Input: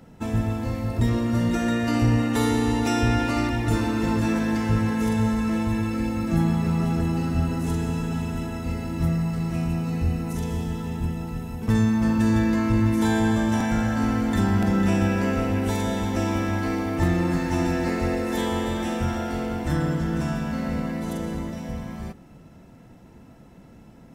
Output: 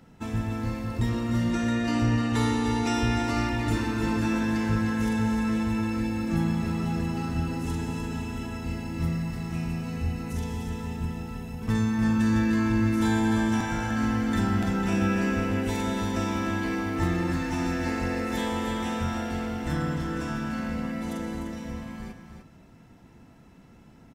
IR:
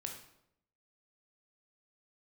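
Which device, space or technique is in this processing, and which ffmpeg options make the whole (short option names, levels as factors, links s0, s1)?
filtered reverb send: -filter_complex "[0:a]asplit=2[s0][s1];[s1]highpass=f=530:w=0.5412,highpass=f=530:w=1.3066,lowpass=8600[s2];[1:a]atrim=start_sample=2205[s3];[s2][s3]afir=irnorm=-1:irlink=0,volume=0.631[s4];[s0][s4]amix=inputs=2:normalize=0,asettb=1/sr,asplit=3[s5][s6][s7];[s5]atrim=end=1.514[s8];[s6]atrim=start=1.51:end=2.94,asetpts=PTS-STARTPTS,afade=t=in:d=0.004:c=qsin,afade=t=out:st=1.426:d=0.004:c=qsin,lowpass=9800[s9];[s7]atrim=start=2.936[s10];[s8][s9]acrossfade=d=0.004:c1=hsin:c2=qsin[s11];[s11][s10]acrossfade=d=0.004:c1=qsin:c2=hsin,aecho=1:1:300:0.398,volume=0.562"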